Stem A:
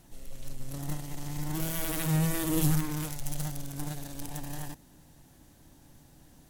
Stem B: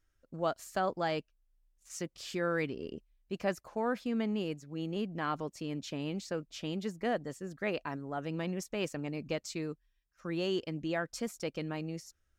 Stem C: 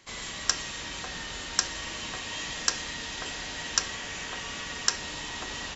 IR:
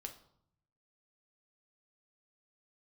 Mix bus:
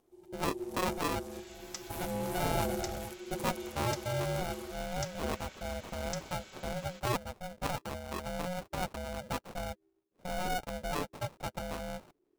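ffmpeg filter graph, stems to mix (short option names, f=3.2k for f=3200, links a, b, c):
-filter_complex "[0:a]asoftclip=type=tanh:threshold=-23dB,equalizer=f=440:t=o:w=0.48:g=14.5,volume=-7.5dB,asplit=2[a][b];[b]volume=-6.5dB[c];[1:a]lowpass=f=5.9k:w=0.5412,lowpass=f=5.9k:w=1.3066,acrusher=samples=30:mix=1:aa=0.000001,volume=2dB,asplit=2[d][e];[2:a]aecho=1:1:5.4:0.65,adelay=1250,volume=-15.5dB[f];[e]apad=whole_len=286646[g];[a][g]sidechaingate=range=-33dB:threshold=-57dB:ratio=16:detection=peak[h];[3:a]atrim=start_sample=2205[i];[c][i]afir=irnorm=-1:irlink=0[j];[h][d][f][j]amix=inputs=4:normalize=0,aeval=exprs='val(0)*sin(2*PI*360*n/s)':c=same"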